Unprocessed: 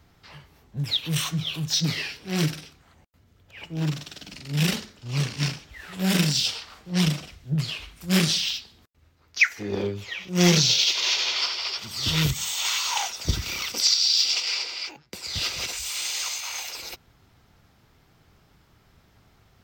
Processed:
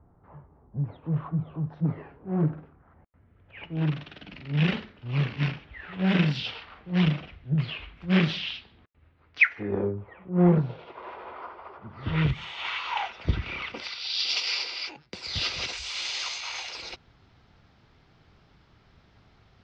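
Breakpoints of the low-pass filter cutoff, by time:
low-pass filter 24 dB per octave
0:02.46 1,100 Hz
0:03.69 2,900 Hz
0:09.51 2,900 Hz
0:09.92 1,200 Hz
0:11.83 1,200 Hz
0:12.30 2,700 Hz
0:13.94 2,700 Hz
0:14.39 5,000 Hz

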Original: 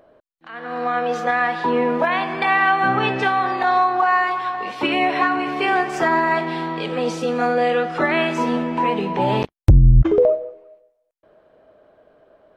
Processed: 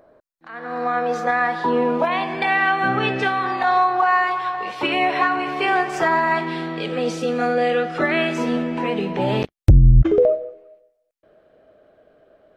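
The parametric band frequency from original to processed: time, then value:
parametric band −9 dB 0.4 octaves
0:01.45 3,000 Hz
0:02.69 960 Hz
0:03.34 960 Hz
0:03.76 250 Hz
0:06.09 250 Hz
0:06.62 960 Hz

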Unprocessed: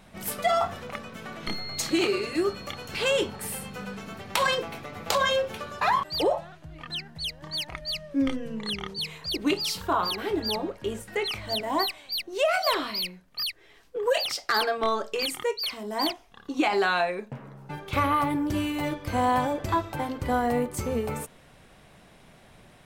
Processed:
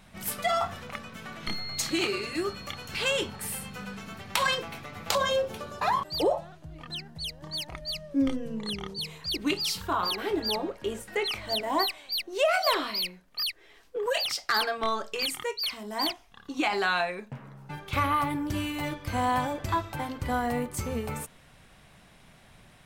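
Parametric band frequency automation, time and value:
parametric band −6 dB 1.8 octaves
450 Hz
from 0:05.15 2,000 Hz
from 0:09.20 540 Hz
from 0:10.03 110 Hz
from 0:14.06 430 Hz

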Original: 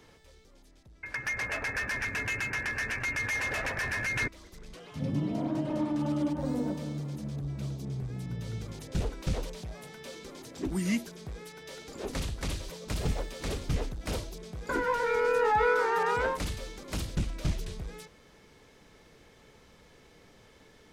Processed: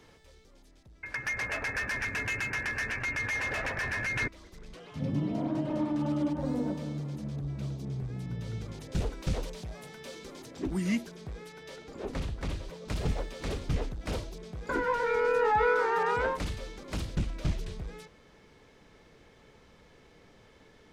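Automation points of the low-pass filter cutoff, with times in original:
low-pass filter 6 dB per octave
11,000 Hz
from 0:02.89 5,200 Hz
from 0:08.89 12,000 Hz
from 0:10.46 4,500 Hz
from 0:11.76 2,000 Hz
from 0:12.85 4,300 Hz

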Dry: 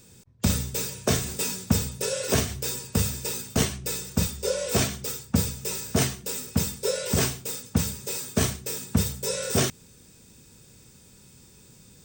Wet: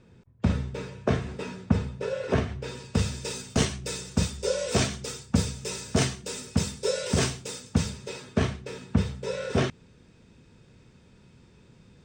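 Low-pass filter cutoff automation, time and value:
0:02.58 2,000 Hz
0:02.86 4,100 Hz
0:03.37 6,900 Hz
0:07.71 6,900 Hz
0:08.28 2,800 Hz

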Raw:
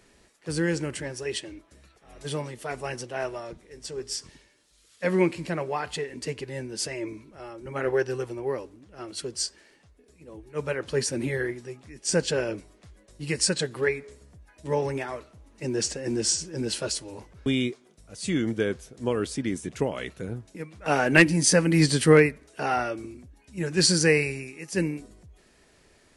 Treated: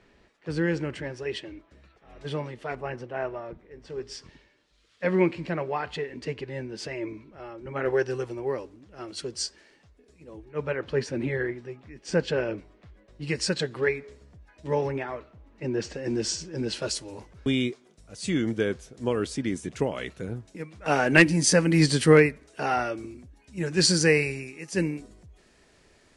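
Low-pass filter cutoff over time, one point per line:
3,400 Hz
from 0:02.75 2,000 Hz
from 0:03.90 3,600 Hz
from 0:07.86 6,900 Hz
from 0:10.45 3,100 Hz
from 0:13.22 5,000 Hz
from 0:14.88 2,900 Hz
from 0:15.94 4,900 Hz
from 0:16.82 8,900 Hz

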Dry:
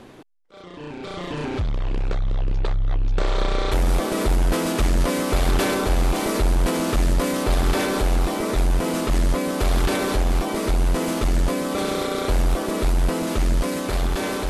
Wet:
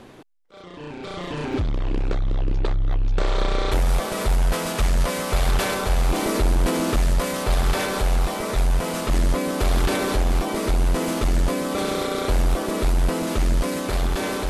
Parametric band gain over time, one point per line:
parametric band 300 Hz 0.7 octaves
−1.5 dB
from 0:01.53 +6.5 dB
from 0:02.93 −0.5 dB
from 0:03.80 −11.5 dB
from 0:06.09 +0.5 dB
from 0:06.98 −9 dB
from 0:09.08 −1 dB

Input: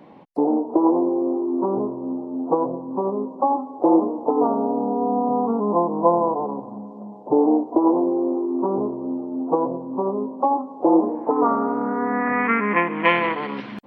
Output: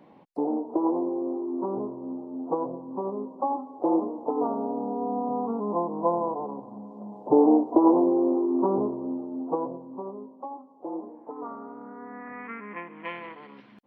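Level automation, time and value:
0:06.69 −7.5 dB
0:07.24 −1 dB
0:08.60 −1 dB
0:09.61 −8 dB
0:10.52 −18.5 dB

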